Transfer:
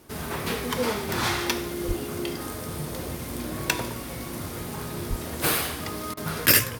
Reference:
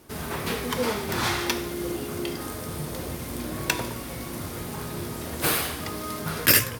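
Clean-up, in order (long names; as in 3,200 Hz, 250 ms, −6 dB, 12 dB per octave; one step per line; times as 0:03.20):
0:01.87–0:01.99: high-pass filter 140 Hz 24 dB per octave
0:05.09–0:05.21: high-pass filter 140 Hz 24 dB per octave
repair the gap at 0:06.14, 30 ms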